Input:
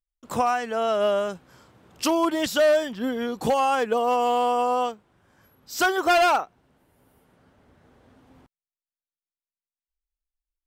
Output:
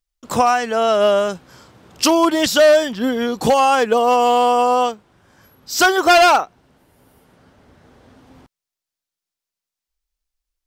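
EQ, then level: peaking EQ 5.2 kHz +4.5 dB 1.1 oct; +7.5 dB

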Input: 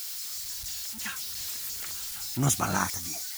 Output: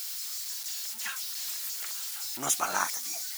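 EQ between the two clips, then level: high-pass 530 Hz 12 dB/octave; 0.0 dB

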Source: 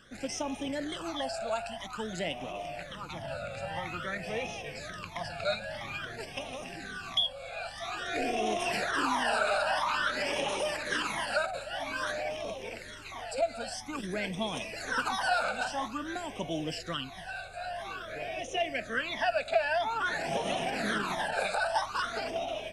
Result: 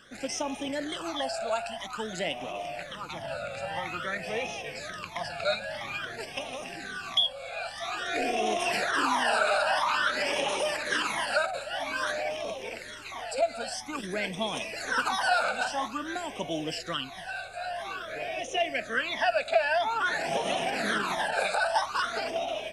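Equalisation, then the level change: bass shelf 180 Hz -9.5 dB; +3.5 dB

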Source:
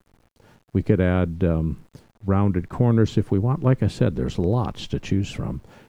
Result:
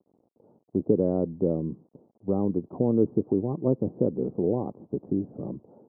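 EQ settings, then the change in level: Gaussian low-pass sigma 14 samples; high-pass 300 Hz 12 dB/octave; +3.5 dB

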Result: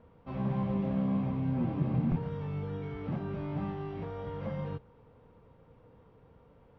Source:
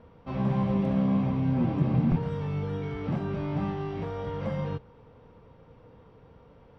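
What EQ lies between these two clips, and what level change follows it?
distance through air 130 m; -5.0 dB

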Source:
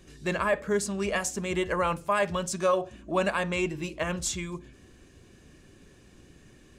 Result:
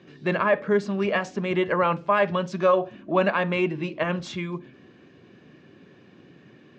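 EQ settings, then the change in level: high-pass 130 Hz 24 dB/octave; low-pass 4.6 kHz 12 dB/octave; distance through air 170 m; +5.5 dB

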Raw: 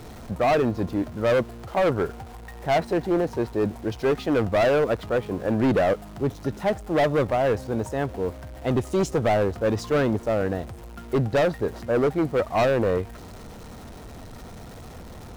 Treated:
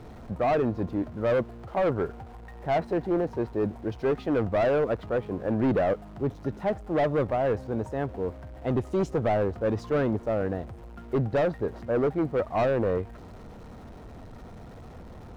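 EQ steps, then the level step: treble shelf 2.6 kHz -9 dB; treble shelf 6.8 kHz -6.5 dB; -3.0 dB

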